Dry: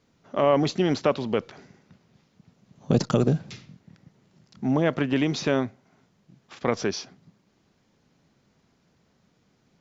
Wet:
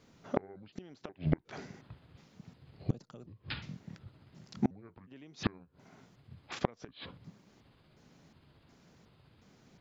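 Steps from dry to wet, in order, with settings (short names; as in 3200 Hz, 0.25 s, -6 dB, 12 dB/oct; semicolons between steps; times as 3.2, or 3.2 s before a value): trilling pitch shifter -6.5 st, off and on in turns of 0.362 s; flipped gate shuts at -19 dBFS, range -33 dB; gain +3.5 dB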